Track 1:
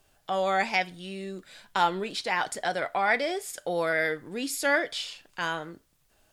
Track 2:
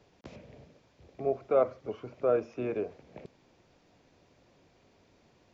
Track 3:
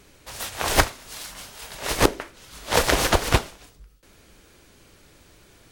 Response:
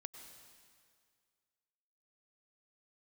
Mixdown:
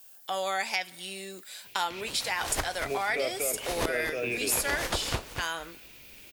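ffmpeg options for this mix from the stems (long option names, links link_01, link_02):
-filter_complex "[0:a]aemphasis=mode=production:type=riaa,volume=-1.5dB,asplit=2[link_01][link_02];[link_02]volume=-16.5dB[link_03];[1:a]highshelf=frequency=1700:width_type=q:width=3:gain=13,adelay=1650,volume=-0.5dB,asplit=2[link_04][link_05];[link_05]volume=-4dB[link_06];[2:a]adelay=1800,volume=-7.5dB,asplit=2[link_07][link_08];[link_08]volume=-11.5dB[link_09];[3:a]atrim=start_sample=2205[link_10];[link_03][link_10]afir=irnorm=-1:irlink=0[link_11];[link_06][link_09]amix=inputs=2:normalize=0,aecho=0:1:238:1[link_12];[link_01][link_04][link_07][link_11][link_12]amix=inputs=5:normalize=0,acompressor=threshold=-28dB:ratio=2.5"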